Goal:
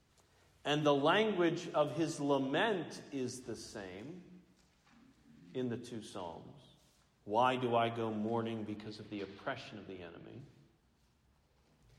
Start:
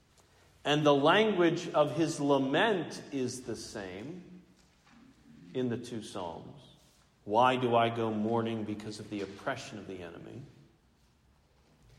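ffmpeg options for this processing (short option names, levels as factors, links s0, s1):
-filter_complex "[0:a]asettb=1/sr,asplit=3[s0][s1][s2];[s0]atrim=end=8.764[s3];[s1]atrim=start=8.76:end=10.4,asetpts=PTS-STARTPTS,afade=t=in:d=0.004:c=qsin,afade=t=out:st=1.636:d=0.004:c=qsin,highshelf=f=5300:t=q:w=1.5:g=-9[s4];[s2]atrim=start=10.396[s5];[s3][s4]acrossfade=d=0.004:c1=hsin:c2=qsin[s6];[s6][s5]acrossfade=d=0.004:c1=qsin:c2=hsin,volume=0.531"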